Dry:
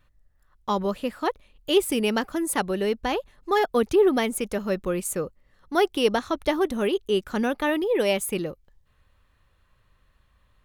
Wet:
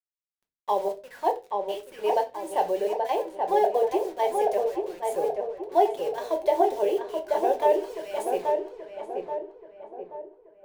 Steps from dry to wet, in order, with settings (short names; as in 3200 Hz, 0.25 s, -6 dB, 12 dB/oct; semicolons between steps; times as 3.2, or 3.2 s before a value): G.711 law mismatch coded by mu; high shelf 7300 Hz +11 dB; in parallel at -1.5 dB: compressor 6:1, threshold -29 dBFS, peak gain reduction 14 dB; on the sum: step gate "xxxx.xx..x.xx." 68 bpm -12 dB; soft clip -9 dBFS, distortion -25 dB; auto-wah 740–1900 Hz, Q 2.2, down, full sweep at -18.5 dBFS; fixed phaser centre 540 Hz, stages 4; bit-crush 9-bit; darkening echo 0.83 s, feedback 49%, low-pass 1800 Hz, level -3 dB; on a send at -3.5 dB: reverb RT60 0.30 s, pre-delay 5 ms; on the sum: mismatched tape noise reduction decoder only; gain +5 dB